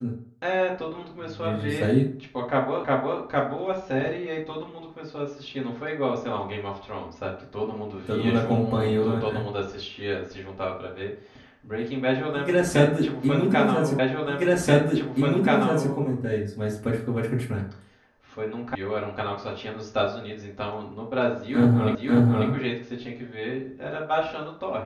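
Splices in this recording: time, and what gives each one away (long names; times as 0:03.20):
0:02.84: the same again, the last 0.36 s
0:13.99: the same again, the last 1.93 s
0:18.75: cut off before it has died away
0:21.95: the same again, the last 0.54 s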